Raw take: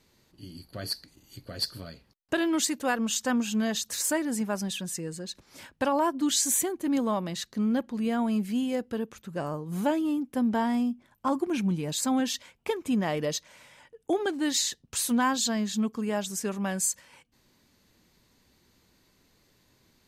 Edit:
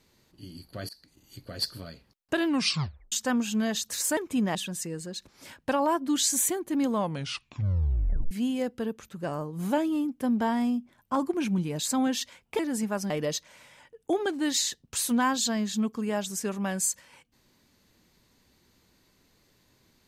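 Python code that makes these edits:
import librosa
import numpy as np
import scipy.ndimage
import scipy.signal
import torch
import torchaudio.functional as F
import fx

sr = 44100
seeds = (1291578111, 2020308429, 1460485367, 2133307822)

y = fx.edit(x, sr, fx.fade_in_from(start_s=0.89, length_s=0.58, curve='qsin', floor_db=-21.5),
    fx.tape_stop(start_s=2.46, length_s=0.66),
    fx.swap(start_s=4.17, length_s=0.51, other_s=12.72, other_length_s=0.38),
    fx.tape_stop(start_s=7.08, length_s=1.36), tone=tone)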